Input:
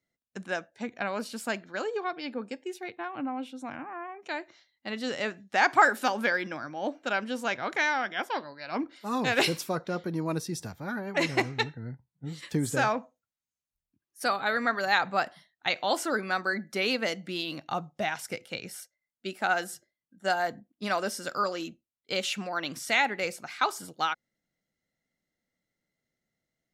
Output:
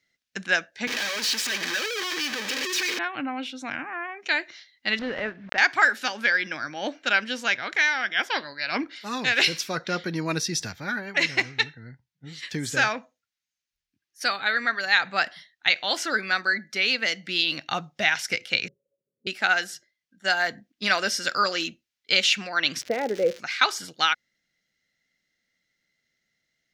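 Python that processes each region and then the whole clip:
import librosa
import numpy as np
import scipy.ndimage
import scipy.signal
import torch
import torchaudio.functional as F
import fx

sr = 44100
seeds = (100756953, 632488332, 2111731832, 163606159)

y = fx.chain(x, sr, fx.clip_1bit(),
    fx.highpass(hz=300.0, slope=12),
    fx.notch_comb(f0_hz=700.0), at=(0.87, 2.99))
y = fx.chain(y, sr, fx.block_float(bits=3),
    fx.lowpass(hz=1100.0, slope=12),
    fx.pre_swell(db_per_s=100.0), at=(4.99, 5.58))
y = fx.chain(y, sr, fx.crossing_spikes(level_db=-33.5),
    fx.cheby_ripple(hz=570.0, ripple_db=9),
    fx.doppler_dist(depth_ms=0.15), at=(18.68, 19.27))
y = fx.lowpass_res(y, sr, hz=480.0, q=4.2, at=(22.8, 23.38), fade=0.02)
y = fx.dmg_crackle(y, sr, seeds[0], per_s=210.0, level_db=-36.0, at=(22.8, 23.38), fade=0.02)
y = fx.band_shelf(y, sr, hz=3100.0, db=12.0, octaves=2.4)
y = fx.rider(y, sr, range_db=4, speed_s=0.5)
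y = y * librosa.db_to_amplitude(-2.0)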